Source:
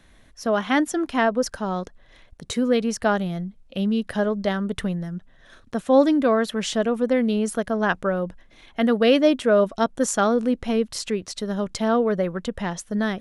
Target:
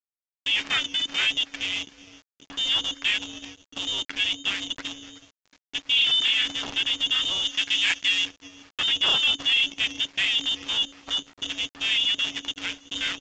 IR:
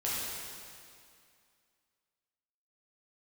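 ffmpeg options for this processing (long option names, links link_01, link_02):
-filter_complex "[0:a]highpass=frequency=260:width=0.5412,highpass=frequency=260:width=1.3066,flanger=delay=6.7:depth=8.5:regen=-22:speed=1.9:shape=sinusoidal,asettb=1/sr,asplit=3[link_01][link_02][link_03];[link_01]atrim=end=5.894[link_04];[link_02]atrim=start=5.89:end=6.51,asetpts=PTS-STARTPTS,afade=type=in:duration=0.004:curve=qsin,afade=type=out:start_time=0.616:duration=0.004:curve=qsin,asplit=2[link_05][link_06];[link_06]adelay=33,volume=-5dB[link_07];[link_05][link_07]amix=inputs=2:normalize=0,atrim=end_sample=27342[link_08];[link_03]atrim=start=6.506[link_09];[link_04][link_08]acrossfade=duration=0.004:curve1=hsin:curve2=qsin[link_10];[link_10][link_09]acrossfade=duration=0.004:curve1=qsin:curve2=hsin,aecho=1:1:374|748:0.112|0.0314,lowpass=frequency=3100:width_type=q:width=0.5098,lowpass=frequency=3100:width_type=q:width=0.6013,lowpass=frequency=3100:width_type=q:width=0.9,lowpass=frequency=3100:width_type=q:width=2.563,afreqshift=-3600,agate=range=-33dB:threshold=-48dB:ratio=3:detection=peak,acrusher=bits=6:dc=4:mix=0:aa=0.000001,asettb=1/sr,asplit=3[link_11][link_12][link_13];[link_11]atrim=end=7.454[link_14];[link_12]atrim=start=7.45:end=8.24,asetpts=PTS-STARTPTS,afade=type=in:duration=0.004:curve=qsin,afade=type=out:start_time=0.786:duration=0.004:curve=qsin,tiltshelf=frequency=910:gain=-5.5[link_15];[link_13]atrim=start=8.236[link_16];[link_14][link_15]acrossfade=duration=0.004:curve1=hsin:curve2=qsin[link_17];[link_17][link_16]acrossfade=duration=0.004:curve1=qsin:curve2=hsin,asoftclip=type=tanh:threshold=-20dB,aeval=exprs='val(0)*sin(2*PI*280*n/s)':channel_layout=same,volume=6dB" -ar 16000 -c:a pcm_mulaw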